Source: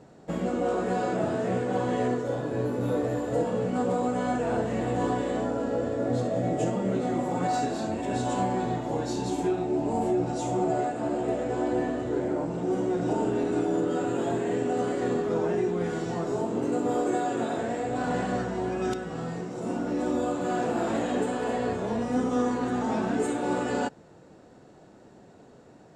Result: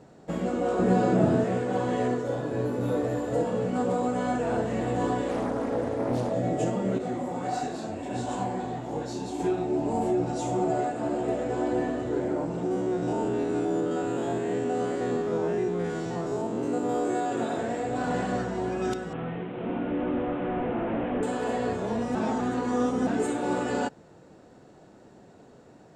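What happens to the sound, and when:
0.79–1.44 s: peaking EQ 150 Hz +10 dB 2.8 oct
5.28–6.33 s: loudspeaker Doppler distortion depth 0.59 ms
6.98–9.40 s: detune thickener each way 52 cents
12.66–17.32 s: spectrogram pixelated in time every 50 ms
19.13–21.23 s: one-bit delta coder 16 kbps, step -40.5 dBFS
22.15–23.07 s: reverse

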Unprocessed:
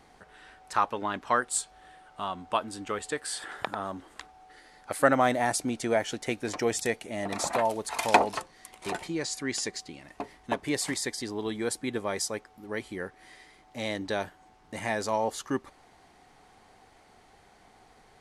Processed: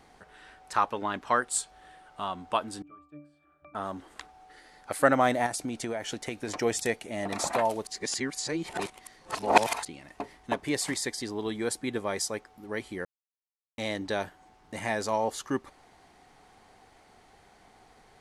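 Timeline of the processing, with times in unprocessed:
2.82–3.75 s: pitch-class resonator D, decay 0.42 s
5.46–6.55 s: compression 12:1, threshold -28 dBFS
7.87–9.85 s: reverse
13.05–13.78 s: mute

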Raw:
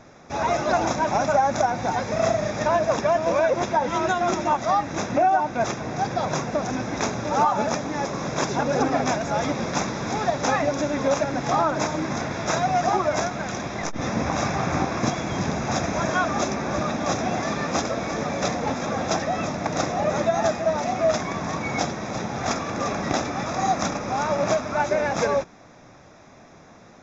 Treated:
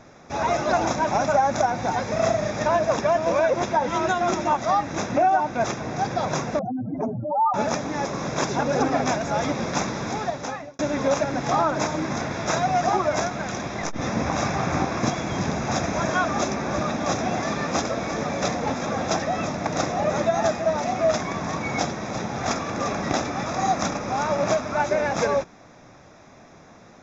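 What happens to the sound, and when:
6.59–7.54 s: spectral contrast enhancement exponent 3.7
9.99–10.79 s: fade out

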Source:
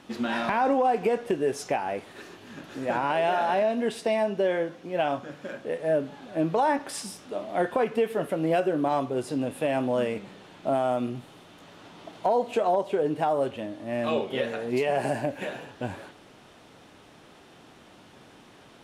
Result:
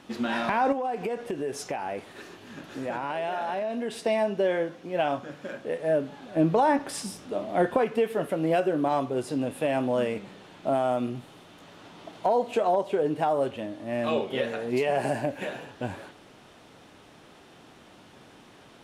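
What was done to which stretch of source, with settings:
0.72–3.98 s: compression 3:1, threshold -28 dBFS
6.36–7.79 s: bass shelf 390 Hz +6 dB

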